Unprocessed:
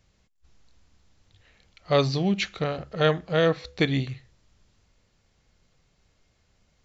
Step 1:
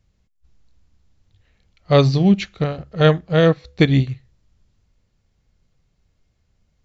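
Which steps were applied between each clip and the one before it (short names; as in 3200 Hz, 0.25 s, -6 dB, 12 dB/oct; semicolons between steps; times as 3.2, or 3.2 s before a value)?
low shelf 260 Hz +10 dB; upward expander 1.5:1, over -37 dBFS; gain +5 dB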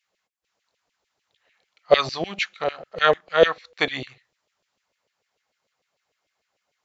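LFO high-pass saw down 6.7 Hz 460–2800 Hz; low shelf 190 Hz +9.5 dB; gain -1.5 dB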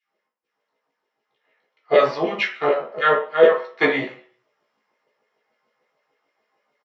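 vocal rider within 4 dB 0.5 s; doubler 14 ms -4.5 dB; reverb RT60 0.40 s, pre-delay 3 ms, DRR -5 dB; gain -13 dB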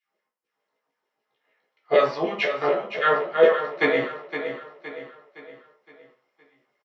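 feedback echo 0.515 s, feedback 44%, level -9.5 dB; gain -3 dB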